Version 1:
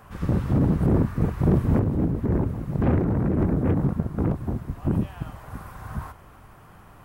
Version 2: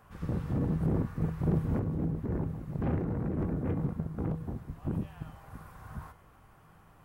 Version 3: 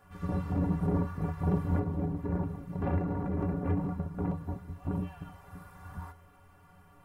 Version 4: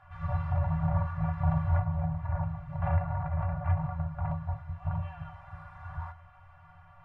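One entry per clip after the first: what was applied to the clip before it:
feedback comb 160 Hz, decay 0.66 s, harmonics odd, mix 70%
inharmonic resonator 85 Hz, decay 0.23 s, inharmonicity 0.03; dynamic bell 920 Hz, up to +6 dB, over -60 dBFS, Q 1.1; trim +7.5 dB
low-pass 2.5 kHz 12 dB/octave; FFT band-reject 170–570 Hz; trim +4.5 dB

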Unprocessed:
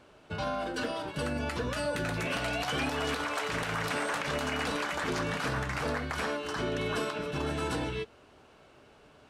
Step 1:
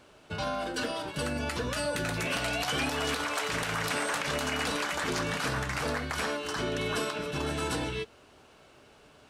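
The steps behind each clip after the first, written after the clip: treble shelf 3.5 kHz +7 dB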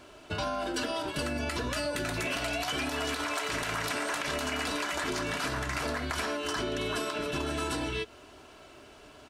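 comb 3 ms, depth 43%; compression, threshold -33 dBFS, peak gain reduction 7.5 dB; trim +4 dB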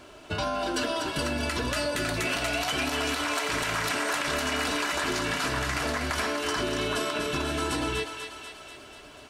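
thinning echo 244 ms, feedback 65%, high-pass 750 Hz, level -6 dB; trim +3 dB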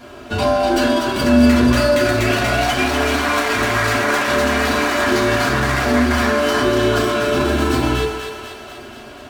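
reverberation RT60 0.70 s, pre-delay 4 ms, DRR -6.5 dB; sliding maximum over 3 samples; trim +3.5 dB

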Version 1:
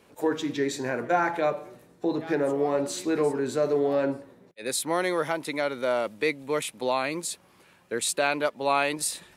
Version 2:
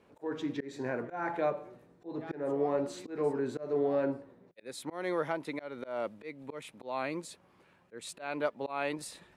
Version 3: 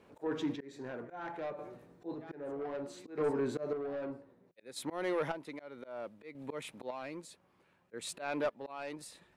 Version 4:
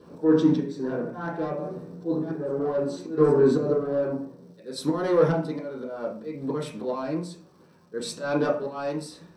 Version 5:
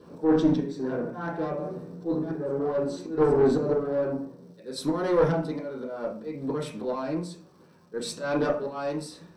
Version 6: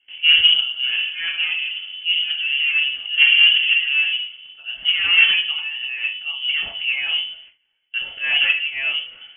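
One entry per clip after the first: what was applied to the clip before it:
treble shelf 11 kHz -6 dB; slow attack 205 ms; treble shelf 3.1 kHz -11.5 dB; trim -4.5 dB
saturation -28 dBFS, distortion -13 dB; square tremolo 0.63 Hz, depth 60%, duty 35%; trim +2 dB
crackle 530 per s -63 dBFS; reverberation RT60 0.45 s, pre-delay 3 ms, DRR -3.5 dB
single-diode clipper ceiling -16 dBFS
crackle 44 per s -48 dBFS; gate with hold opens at -40 dBFS; frequency inversion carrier 3.2 kHz; trim +7.5 dB

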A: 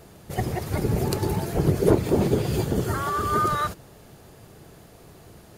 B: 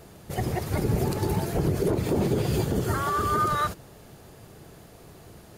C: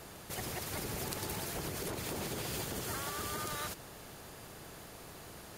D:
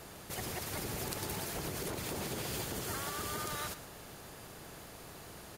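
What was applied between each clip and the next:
peak limiter -15.5 dBFS, peak gain reduction 10 dB
spectrum-flattening compressor 2:1; trim -2.5 dB
delay 113 ms -14 dB

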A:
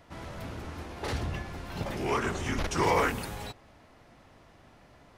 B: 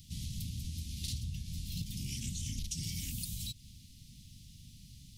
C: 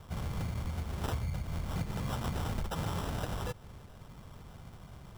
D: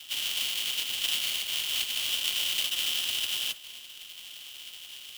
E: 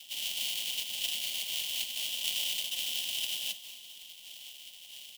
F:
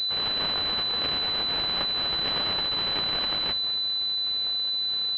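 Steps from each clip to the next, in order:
inverse Chebyshev band-stop 470–1400 Hz, stop band 60 dB; treble shelf 5.4 kHz +8.5 dB; compression 6:1, threshold -43 dBFS, peak gain reduction 14 dB; trim +7 dB
sample-and-hold 20×; trim +4 dB
spectral contrast reduction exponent 0.37; resonant high-pass 3 kHz, resonance Q 7.7; modulation noise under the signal 11 dB
static phaser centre 360 Hz, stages 6; frequency-shifting echo 226 ms, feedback 60%, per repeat +48 Hz, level -15.5 dB; random flutter of the level, depth 50%
class-D stage that switches slowly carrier 4 kHz; trim +7.5 dB

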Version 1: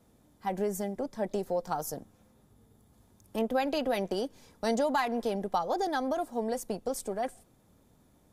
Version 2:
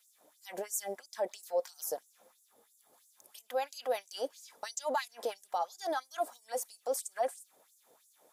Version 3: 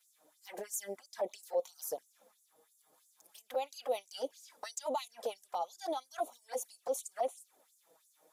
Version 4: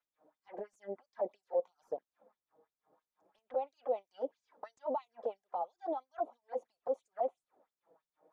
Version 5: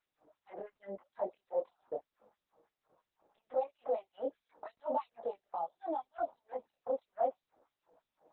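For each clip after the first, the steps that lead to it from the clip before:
treble shelf 6.3 kHz +7.5 dB; peak limiter -27.5 dBFS, peak gain reduction 11 dB; LFO high-pass sine 3 Hz 480–7400 Hz
touch-sensitive flanger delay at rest 7 ms, full sweep at -32 dBFS
low-pass 1 kHz 12 dB/octave; trim +1 dB
dynamic bell 430 Hz, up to -4 dB, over -47 dBFS, Q 0.98; chorus voices 2, 0.35 Hz, delay 22 ms, depth 3.9 ms; trim +6 dB; Opus 8 kbps 48 kHz

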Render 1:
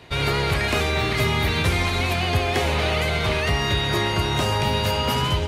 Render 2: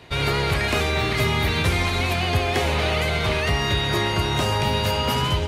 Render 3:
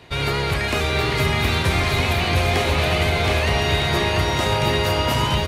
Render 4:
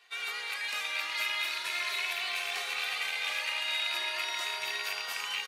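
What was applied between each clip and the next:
no audible change
bouncing-ball echo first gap 720 ms, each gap 0.75×, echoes 5
rattle on loud lows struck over -19 dBFS, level -11 dBFS; high-pass 1.4 kHz 12 dB/octave; endless flanger 2.2 ms +0.39 Hz; trim -6 dB

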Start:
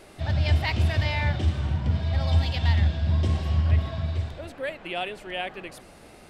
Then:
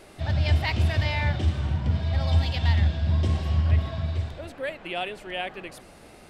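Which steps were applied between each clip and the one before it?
no audible change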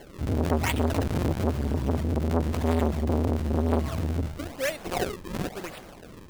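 decimation with a swept rate 35×, swing 160% 1 Hz; transformer saturation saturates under 630 Hz; trim +3.5 dB

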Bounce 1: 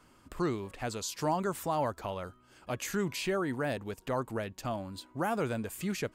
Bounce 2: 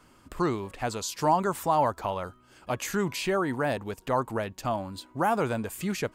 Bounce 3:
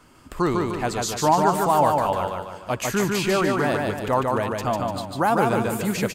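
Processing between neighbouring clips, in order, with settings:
dynamic bell 920 Hz, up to +6 dB, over -47 dBFS, Q 1.6; trim +3.5 dB
feedback delay 148 ms, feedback 47%, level -3 dB; trim +4.5 dB

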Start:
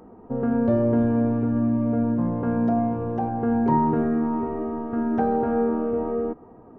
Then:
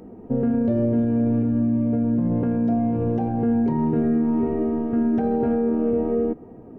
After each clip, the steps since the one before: FFT filter 160 Hz 0 dB, 650 Hz -7 dB, 1.1 kHz -14 dB, 2.3 kHz 0 dB; peak limiter -23 dBFS, peak gain reduction 9.5 dB; peaking EQ 400 Hz +5 dB 2.9 oct; trim +4.5 dB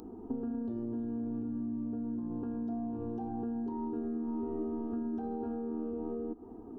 compression 12:1, threshold -28 dBFS, peak gain reduction 11.5 dB; static phaser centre 560 Hz, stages 6; upward compressor, threshold -50 dBFS; trim -2 dB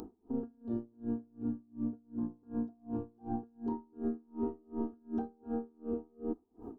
logarithmic tremolo 2.7 Hz, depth 35 dB; trim +4.5 dB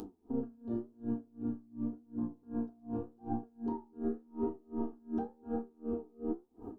flange 0.89 Hz, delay 9.3 ms, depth 8.4 ms, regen +62%; trim +5 dB

